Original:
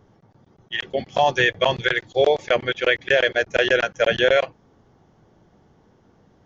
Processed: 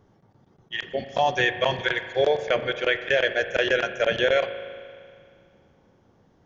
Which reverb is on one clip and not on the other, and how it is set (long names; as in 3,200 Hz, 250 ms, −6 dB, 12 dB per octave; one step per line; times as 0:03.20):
spring reverb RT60 2.2 s, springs 38 ms, chirp 55 ms, DRR 10 dB
level −4 dB